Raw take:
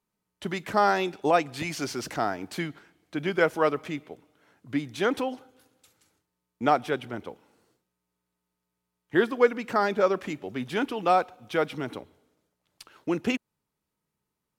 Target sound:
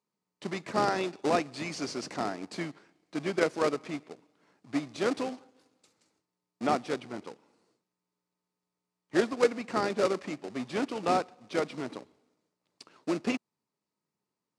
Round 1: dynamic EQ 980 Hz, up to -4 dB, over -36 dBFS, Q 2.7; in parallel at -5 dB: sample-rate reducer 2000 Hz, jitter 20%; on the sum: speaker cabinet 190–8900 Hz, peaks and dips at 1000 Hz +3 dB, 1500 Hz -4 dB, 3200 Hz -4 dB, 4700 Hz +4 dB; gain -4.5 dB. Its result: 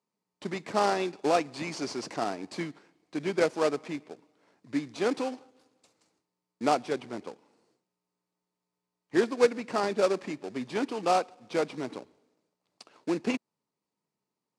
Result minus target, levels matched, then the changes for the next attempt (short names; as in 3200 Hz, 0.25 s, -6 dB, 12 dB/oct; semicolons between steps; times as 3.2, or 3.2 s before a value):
sample-rate reducer: distortion -17 dB
change: sample-rate reducer 960 Hz, jitter 20%